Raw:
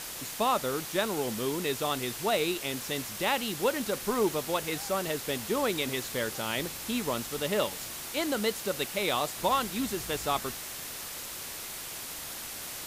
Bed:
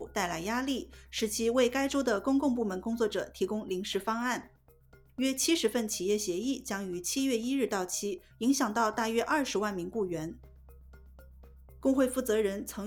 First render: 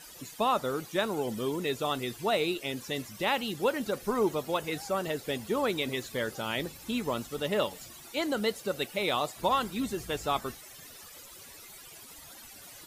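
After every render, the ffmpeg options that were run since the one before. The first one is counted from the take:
ffmpeg -i in.wav -af "afftdn=noise_reduction=15:noise_floor=-40" out.wav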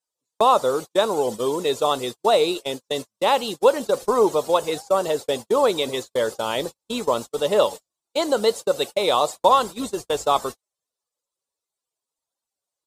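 ffmpeg -i in.wav -af "equalizer=frequency=500:width_type=o:width=1:gain=11,equalizer=frequency=1000:width_type=o:width=1:gain=10,equalizer=frequency=2000:width_type=o:width=1:gain=-4,equalizer=frequency=4000:width_type=o:width=1:gain=7,equalizer=frequency=8000:width_type=o:width=1:gain=11,agate=range=-47dB:threshold=-28dB:ratio=16:detection=peak" out.wav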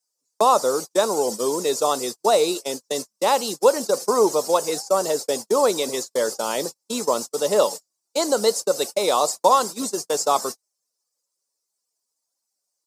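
ffmpeg -i in.wav -af "highpass=frequency=160:width=0.5412,highpass=frequency=160:width=1.3066,highshelf=frequency=4200:width_type=q:width=3:gain=6.5" out.wav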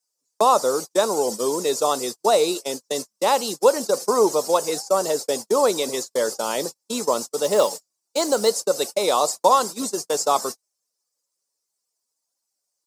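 ffmpeg -i in.wav -filter_complex "[0:a]asettb=1/sr,asplit=3[link_01][link_02][link_03];[link_01]atrim=end=7.434[link_04];[link_02]atrim=start=7.43:end=8.48,asetpts=PTS-STARTPTS,afade=type=in:duration=0.004:curve=qsin,afade=type=out:start_time=1.046:duration=0.004:curve=qsin,acrusher=bits=6:mode=log:mix=0:aa=0.000001[link_05];[link_03]atrim=start=8.476[link_06];[link_04][link_05]acrossfade=duration=0.004:curve1=hsin:curve2=qsin[link_07];[link_07][link_06]acrossfade=duration=0.004:curve1=qsin:curve2=hsin" out.wav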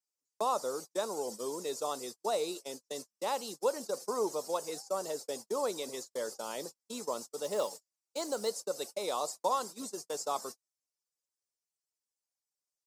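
ffmpeg -i in.wav -af "volume=-14.5dB" out.wav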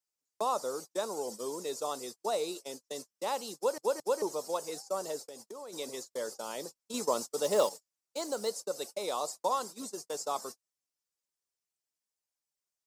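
ffmpeg -i in.wav -filter_complex "[0:a]asplit=3[link_01][link_02][link_03];[link_01]afade=type=out:start_time=5.22:duration=0.02[link_04];[link_02]acompressor=threshold=-43dB:ratio=5:attack=3.2:release=140:knee=1:detection=peak,afade=type=in:start_time=5.22:duration=0.02,afade=type=out:start_time=5.72:duration=0.02[link_05];[link_03]afade=type=in:start_time=5.72:duration=0.02[link_06];[link_04][link_05][link_06]amix=inputs=3:normalize=0,asplit=6[link_07][link_08][link_09][link_10][link_11][link_12];[link_07]atrim=end=3.782[link_13];[link_08]atrim=start=3.558:end=3.782[link_14];[link_09]atrim=start=3.558:end=3.782[link_15];[link_10]atrim=start=4.218:end=6.942[link_16];[link_11]atrim=start=6.938:end=7.692,asetpts=PTS-STARTPTS,volume=6dB[link_17];[link_12]atrim=start=7.688[link_18];[link_13][link_14]acrossfade=duration=0.004:curve1=hsin:curve2=hsin[link_19];[link_19][link_15]acrossfade=duration=0.004:curve1=hsin:curve2=hsin[link_20];[link_20][link_16]acrossfade=duration=0.004:curve1=hsin:curve2=hsin[link_21];[link_21][link_17]acrossfade=duration=0.004:curve1=hsin:curve2=hsin[link_22];[link_22][link_18]acrossfade=duration=0.004:curve1=hsin:curve2=hsin" out.wav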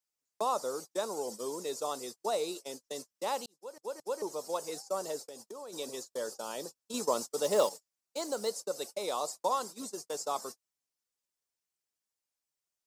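ffmpeg -i in.wav -filter_complex "[0:a]asettb=1/sr,asplit=3[link_01][link_02][link_03];[link_01]atrim=end=5.334[link_04];[link_02]atrim=start=5.33:end=7.08,asetpts=PTS-STARTPTS,afade=type=in:duration=0.004:curve=qsin,afade=type=out:start_time=1.746:duration=0.004:curve=qsin,bandreject=frequency=2100:width=7.8[link_05];[link_03]atrim=start=7.076[link_06];[link_04][link_05]acrossfade=duration=0.004:curve1=hsin:curve2=qsin[link_07];[link_07][link_06]acrossfade=duration=0.004:curve1=qsin:curve2=hsin,asplit=2[link_08][link_09];[link_08]atrim=end=3.46,asetpts=PTS-STARTPTS,afade=type=out:start_time=3.456:duration=0.004:curve=hsin[link_10];[link_09]atrim=start=3.46,asetpts=PTS-STARTPTS,afade=type=in:duration=1.2[link_11];[link_10][link_11]concat=n=2:v=0:a=1" out.wav

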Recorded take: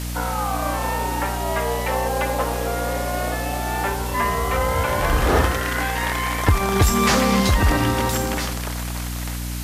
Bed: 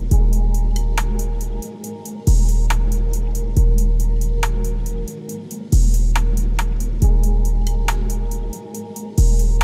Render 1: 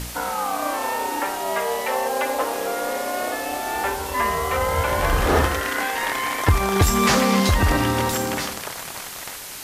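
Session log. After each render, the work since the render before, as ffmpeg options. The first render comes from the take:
ffmpeg -i in.wav -af "bandreject=frequency=60:width_type=h:width=4,bandreject=frequency=120:width_type=h:width=4,bandreject=frequency=180:width_type=h:width=4,bandreject=frequency=240:width_type=h:width=4,bandreject=frequency=300:width_type=h:width=4" out.wav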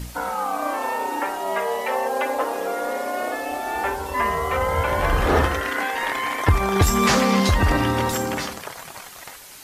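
ffmpeg -i in.wav -af "afftdn=noise_reduction=8:noise_floor=-34" out.wav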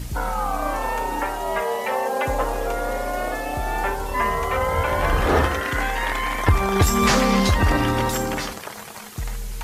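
ffmpeg -i in.wav -i bed.wav -filter_complex "[1:a]volume=-16dB[link_01];[0:a][link_01]amix=inputs=2:normalize=0" out.wav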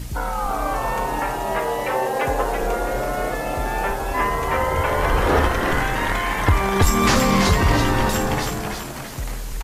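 ffmpeg -i in.wav -filter_complex "[0:a]asplit=7[link_01][link_02][link_03][link_04][link_05][link_06][link_07];[link_02]adelay=331,afreqshift=-86,volume=-5dB[link_08];[link_03]adelay=662,afreqshift=-172,volume=-11.9dB[link_09];[link_04]adelay=993,afreqshift=-258,volume=-18.9dB[link_10];[link_05]adelay=1324,afreqshift=-344,volume=-25.8dB[link_11];[link_06]adelay=1655,afreqshift=-430,volume=-32.7dB[link_12];[link_07]adelay=1986,afreqshift=-516,volume=-39.7dB[link_13];[link_01][link_08][link_09][link_10][link_11][link_12][link_13]amix=inputs=7:normalize=0" out.wav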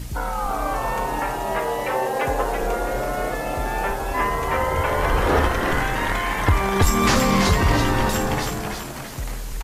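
ffmpeg -i in.wav -af "volume=-1dB" out.wav

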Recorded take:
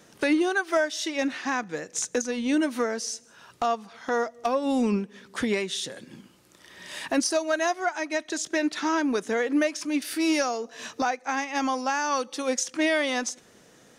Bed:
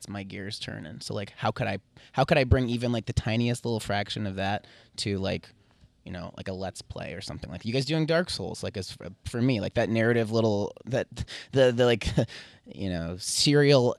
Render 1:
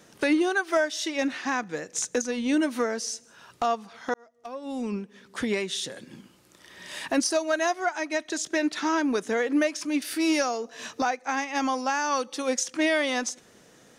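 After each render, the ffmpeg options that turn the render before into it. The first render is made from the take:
ffmpeg -i in.wav -filter_complex "[0:a]asplit=2[link_01][link_02];[link_01]atrim=end=4.14,asetpts=PTS-STARTPTS,afade=type=out:start_time=4.136:duration=0.004:curve=hsin[link_03];[link_02]atrim=start=4.14,asetpts=PTS-STARTPTS,afade=type=in:duration=1.59[link_04];[link_03][link_04]concat=n=2:v=0:a=1" out.wav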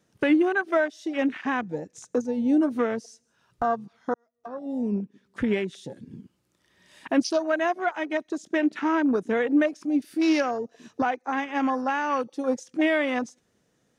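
ffmpeg -i in.wav -af "equalizer=frequency=72:width=0.35:gain=8.5,afwtdn=0.0251" out.wav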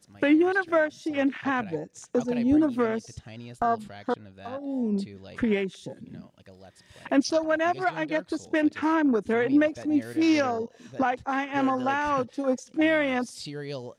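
ffmpeg -i in.wav -i bed.wav -filter_complex "[1:a]volume=-16dB[link_01];[0:a][link_01]amix=inputs=2:normalize=0" out.wav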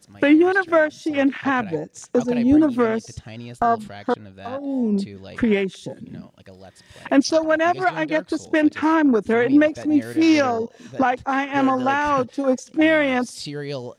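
ffmpeg -i in.wav -af "volume=6dB" out.wav

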